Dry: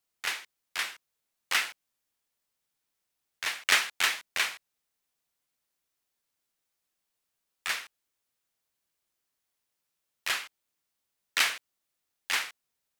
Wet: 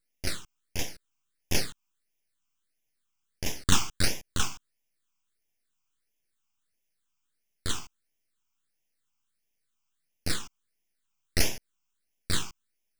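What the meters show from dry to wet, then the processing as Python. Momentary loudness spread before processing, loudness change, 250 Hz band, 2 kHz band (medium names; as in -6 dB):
15 LU, -2.0 dB, +19.0 dB, -8.5 dB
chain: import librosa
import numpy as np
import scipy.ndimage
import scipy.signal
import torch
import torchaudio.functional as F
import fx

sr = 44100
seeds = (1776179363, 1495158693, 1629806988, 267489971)

y = np.abs(x)
y = fx.phaser_stages(y, sr, stages=8, low_hz=530.0, high_hz=1300.0, hz=1.5, feedback_pct=10)
y = y * librosa.db_to_amplitude(5.0)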